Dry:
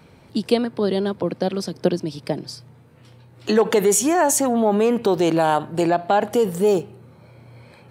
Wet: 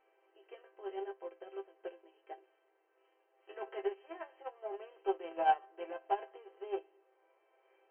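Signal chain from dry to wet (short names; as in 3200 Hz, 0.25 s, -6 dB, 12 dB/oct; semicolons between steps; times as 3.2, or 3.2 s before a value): per-bin compression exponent 0.6; brick-wall FIR band-pass 340–3200 Hz; resonator bank C4 major, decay 0.2 s; added harmonics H 8 -40 dB, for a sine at -5.5 dBFS; upward expander 2.5:1, over -39 dBFS; gain +2 dB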